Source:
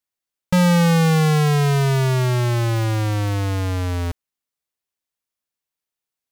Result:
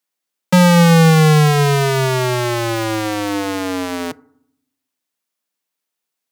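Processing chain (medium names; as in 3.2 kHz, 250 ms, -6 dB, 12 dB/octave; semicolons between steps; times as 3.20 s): steep high-pass 150 Hz 36 dB/octave; FDN reverb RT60 0.69 s, low-frequency decay 1.5×, high-frequency decay 0.35×, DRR 19.5 dB; trim +6.5 dB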